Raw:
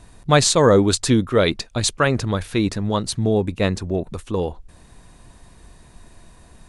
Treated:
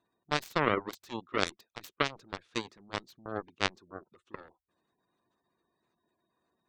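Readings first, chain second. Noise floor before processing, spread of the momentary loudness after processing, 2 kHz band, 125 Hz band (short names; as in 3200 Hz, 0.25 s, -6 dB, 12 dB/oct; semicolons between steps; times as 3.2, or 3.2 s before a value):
-49 dBFS, 20 LU, -8.5 dB, -23.0 dB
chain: spectral gate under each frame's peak -30 dB strong; limiter -9.5 dBFS, peak gain reduction 7 dB; speaker cabinet 230–6700 Hz, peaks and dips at 360 Hz +6 dB, 1200 Hz +7 dB, 3500 Hz +4 dB; added harmonics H 3 -9 dB, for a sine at -3 dBFS; gain -2.5 dB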